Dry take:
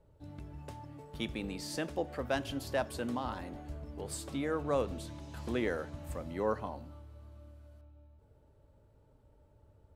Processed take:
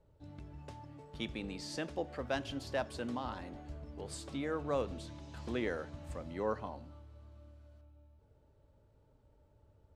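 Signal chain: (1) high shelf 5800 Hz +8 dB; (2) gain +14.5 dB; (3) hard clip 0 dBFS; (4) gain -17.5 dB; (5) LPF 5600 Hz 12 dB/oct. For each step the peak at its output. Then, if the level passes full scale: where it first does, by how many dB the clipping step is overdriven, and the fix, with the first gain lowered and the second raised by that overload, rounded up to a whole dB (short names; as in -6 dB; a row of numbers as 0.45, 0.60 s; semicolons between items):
-17.0, -2.5, -2.5, -20.0, -20.5 dBFS; no overload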